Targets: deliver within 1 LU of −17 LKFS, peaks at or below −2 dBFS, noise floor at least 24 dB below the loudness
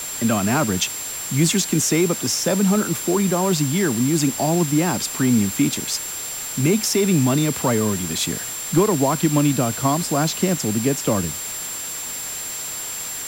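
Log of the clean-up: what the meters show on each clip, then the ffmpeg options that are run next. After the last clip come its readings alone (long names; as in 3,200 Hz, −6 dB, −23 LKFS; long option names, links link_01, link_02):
interfering tone 7,400 Hz; level of the tone −29 dBFS; background noise floor −30 dBFS; target noise floor −45 dBFS; integrated loudness −20.5 LKFS; sample peak −6.5 dBFS; target loudness −17.0 LKFS
→ -af "bandreject=frequency=7400:width=30"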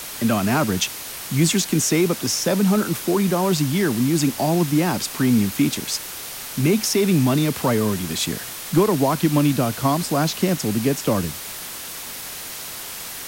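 interfering tone none found; background noise floor −34 dBFS; target noise floor −45 dBFS
→ -af "afftdn=noise_reduction=11:noise_floor=-34"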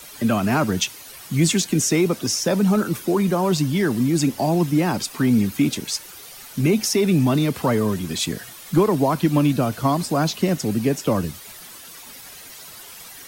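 background noise floor −41 dBFS; target noise floor −45 dBFS
→ -af "afftdn=noise_reduction=6:noise_floor=-41"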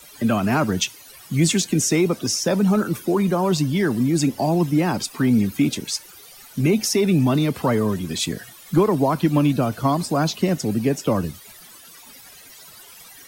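background noise floor −45 dBFS; integrated loudness −21.0 LKFS; sample peak −8.0 dBFS; target loudness −17.0 LKFS
→ -af "volume=4dB"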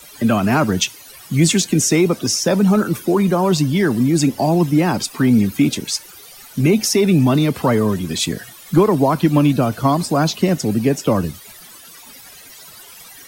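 integrated loudness −17.0 LKFS; sample peak −4.0 dBFS; background noise floor −41 dBFS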